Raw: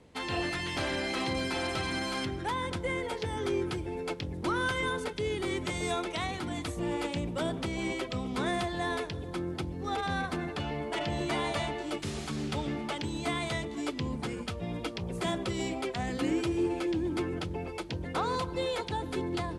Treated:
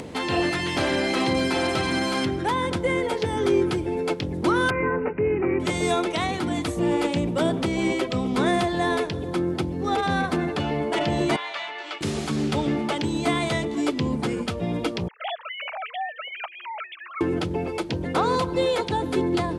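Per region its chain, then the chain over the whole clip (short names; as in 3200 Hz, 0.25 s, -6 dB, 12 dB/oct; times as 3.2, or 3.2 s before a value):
4.7–5.6 LPF 1700 Hz 6 dB/oct + careless resampling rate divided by 8×, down none, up filtered
11.36–12.01 HPF 1400 Hz + air absorption 180 m
15.08–17.21 sine-wave speech + steep high-pass 640 Hz 72 dB/oct
whole clip: HPF 300 Hz 6 dB/oct; low shelf 480 Hz +10 dB; upward compressor, threshold -33 dBFS; gain +6.5 dB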